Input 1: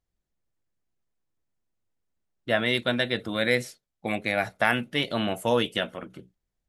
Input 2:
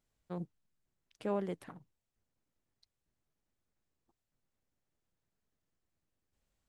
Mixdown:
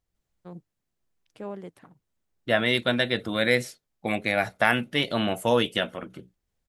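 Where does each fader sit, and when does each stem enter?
+1.5 dB, -2.0 dB; 0.00 s, 0.15 s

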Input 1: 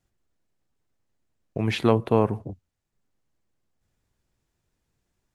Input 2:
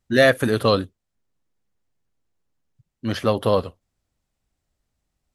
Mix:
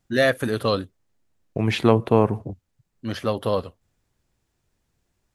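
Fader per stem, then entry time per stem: +3.0 dB, -4.0 dB; 0.00 s, 0.00 s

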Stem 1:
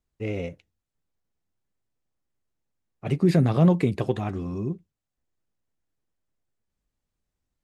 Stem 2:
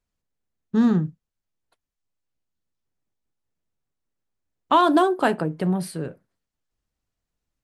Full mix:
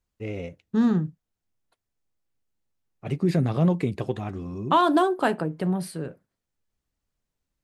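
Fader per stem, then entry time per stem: -3.0 dB, -2.5 dB; 0.00 s, 0.00 s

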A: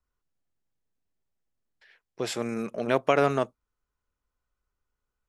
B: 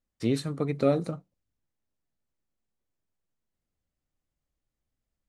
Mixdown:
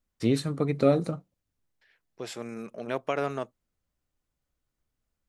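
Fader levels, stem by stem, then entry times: -7.0 dB, +2.0 dB; 0.00 s, 0.00 s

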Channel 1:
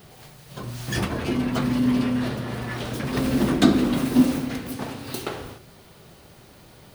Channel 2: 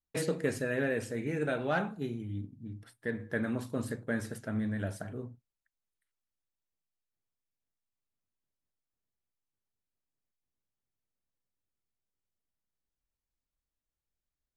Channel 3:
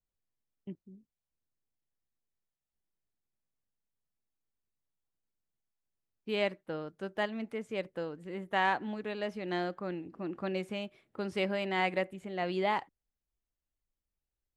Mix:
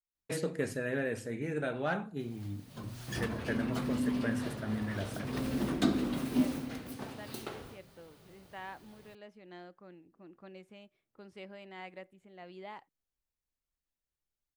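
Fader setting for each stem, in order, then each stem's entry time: -11.5 dB, -2.5 dB, -16.0 dB; 2.20 s, 0.15 s, 0.00 s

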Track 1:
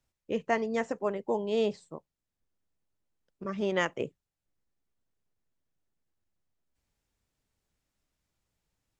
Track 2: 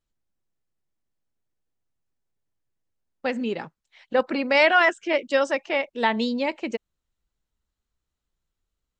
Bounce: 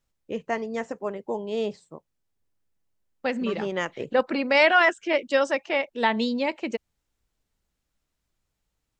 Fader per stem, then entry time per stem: 0.0 dB, -0.5 dB; 0.00 s, 0.00 s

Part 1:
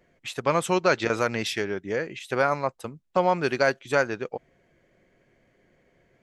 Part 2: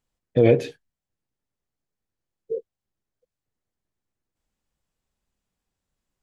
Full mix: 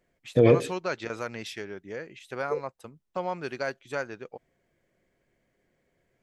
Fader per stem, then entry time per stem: -9.5 dB, -2.0 dB; 0.00 s, 0.00 s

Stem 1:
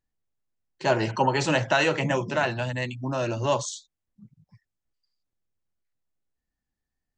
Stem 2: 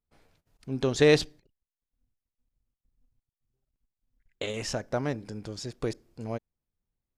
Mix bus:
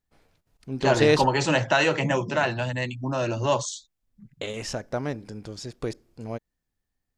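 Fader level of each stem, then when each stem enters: +1.0 dB, +0.5 dB; 0.00 s, 0.00 s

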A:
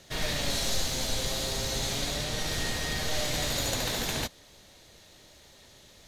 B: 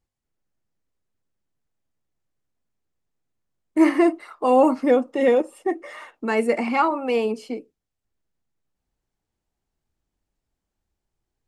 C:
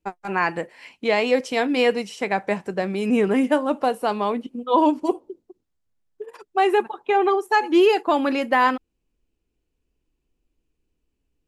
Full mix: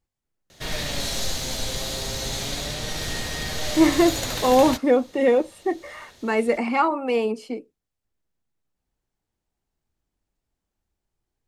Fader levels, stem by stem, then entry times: +2.0 dB, -0.5 dB, mute; 0.50 s, 0.00 s, mute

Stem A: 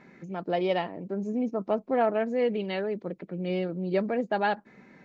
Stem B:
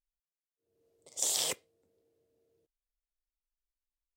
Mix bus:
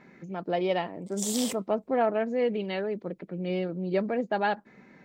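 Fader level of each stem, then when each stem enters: -0.5 dB, -2.0 dB; 0.00 s, 0.00 s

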